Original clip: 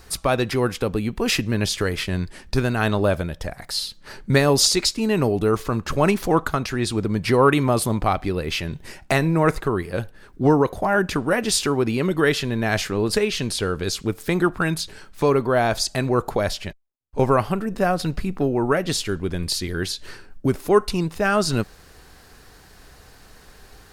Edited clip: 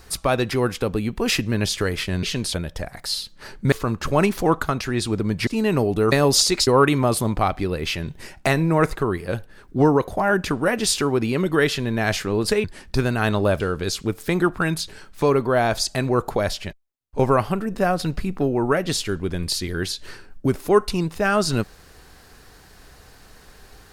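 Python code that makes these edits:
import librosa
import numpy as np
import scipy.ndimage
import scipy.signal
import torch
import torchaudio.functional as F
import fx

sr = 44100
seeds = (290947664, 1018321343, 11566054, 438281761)

y = fx.edit(x, sr, fx.swap(start_s=2.23, length_s=0.96, other_s=13.29, other_length_s=0.31),
    fx.swap(start_s=4.37, length_s=0.55, other_s=5.57, other_length_s=1.75), tone=tone)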